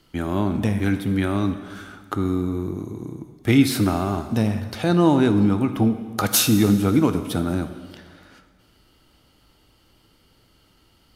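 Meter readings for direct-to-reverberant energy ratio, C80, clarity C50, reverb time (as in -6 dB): 9.0 dB, 11.5 dB, 10.5 dB, 1.7 s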